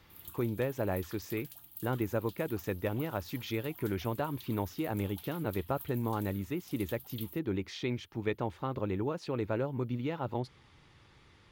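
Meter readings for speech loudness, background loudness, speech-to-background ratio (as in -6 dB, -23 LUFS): -35.5 LUFS, -49.0 LUFS, 13.5 dB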